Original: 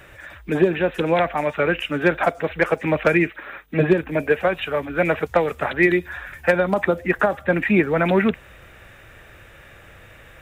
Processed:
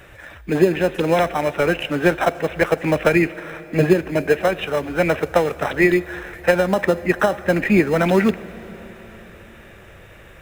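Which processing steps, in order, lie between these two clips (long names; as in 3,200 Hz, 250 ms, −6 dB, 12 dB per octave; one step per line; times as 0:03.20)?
in parallel at −10.5 dB: sample-rate reduction 2,300 Hz, jitter 0%
on the sum: convolution reverb RT60 5.0 s, pre-delay 58 ms, DRR 17.5 dB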